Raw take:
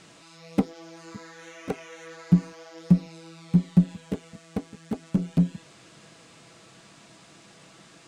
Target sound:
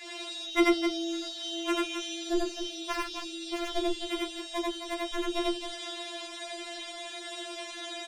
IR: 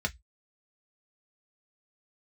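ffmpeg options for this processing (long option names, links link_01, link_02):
-filter_complex "[0:a]aecho=1:1:90.38|262.4:1|0.398[link_01];[1:a]atrim=start_sample=2205,asetrate=36603,aresample=44100[link_02];[link_01][link_02]afir=irnorm=-1:irlink=0,asettb=1/sr,asplit=3[link_03][link_04][link_05];[link_03]atrim=end=2.794[link_06];[link_04]atrim=start=2.79:end=3.71,asetpts=PTS-STARTPTS,afade=type=in:duration=0.004:curve=qsin,afade=type=out:start_time=0.916:duration=0.004:curve=qsin,volume=15.5dB,asoftclip=hard,volume=-15.5dB[link_07];[link_05]atrim=start=3.706[link_08];[link_06][link_07]acrossfade=duration=0.004:curve1=hsin:curve2=qsin[link_09];[link_09][link_08]acrossfade=duration=0.004:curve1=qsin:curve2=hsin,afftfilt=real='re*4*eq(mod(b,16),0)':imag='im*4*eq(mod(b,16),0)':win_size=2048:overlap=0.75,volume=8dB"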